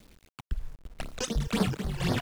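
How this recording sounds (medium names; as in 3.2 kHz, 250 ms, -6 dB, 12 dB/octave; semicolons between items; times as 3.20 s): phasing stages 12, 3.9 Hz, lowest notch 200–2800 Hz; random-step tremolo 4 Hz, depth 90%; a quantiser's noise floor 10-bit, dither none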